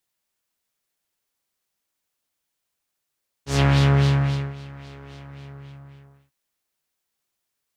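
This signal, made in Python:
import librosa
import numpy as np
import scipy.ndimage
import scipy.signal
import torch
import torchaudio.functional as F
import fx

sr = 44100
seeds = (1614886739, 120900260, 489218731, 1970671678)

y = fx.sub_patch_wobble(sr, seeds[0], note=49, wave='triangle', wave2='saw', interval_st=0, level2_db=-4.5, sub_db=-15.0, noise_db=-10, kind='lowpass', cutoff_hz=1700.0, q=1.6, env_oct=1.5, env_decay_s=0.27, env_sustain_pct=40, attack_ms=140.0, decay_s=0.94, sustain_db=-23.5, release_s=1.2, note_s=1.65, lfo_hz=3.7, wobble_oct=0.7)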